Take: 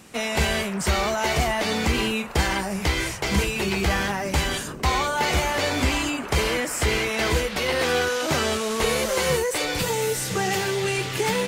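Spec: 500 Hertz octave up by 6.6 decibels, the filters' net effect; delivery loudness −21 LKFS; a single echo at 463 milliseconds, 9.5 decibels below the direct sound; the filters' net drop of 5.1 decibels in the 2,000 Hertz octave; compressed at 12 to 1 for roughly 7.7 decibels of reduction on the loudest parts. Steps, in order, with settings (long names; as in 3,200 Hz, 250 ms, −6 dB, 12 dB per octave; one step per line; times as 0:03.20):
parametric band 500 Hz +8 dB
parametric band 2,000 Hz −7 dB
downward compressor 12 to 1, threshold −21 dBFS
single-tap delay 463 ms −9.5 dB
level +4 dB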